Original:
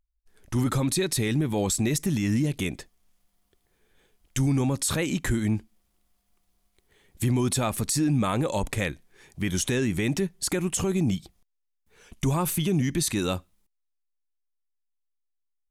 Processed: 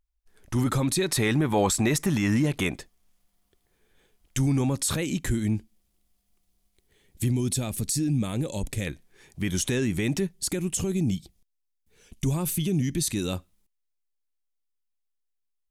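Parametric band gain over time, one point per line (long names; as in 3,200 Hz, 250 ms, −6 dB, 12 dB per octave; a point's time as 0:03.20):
parametric band 1,100 Hz 2 octaves
+1 dB
from 0:01.08 +10 dB
from 0:02.77 −1 dB
from 0:04.96 −7 dB
from 0:07.28 −14 dB
from 0:08.87 −2.5 dB
from 0:10.32 −10 dB
from 0:13.33 −3 dB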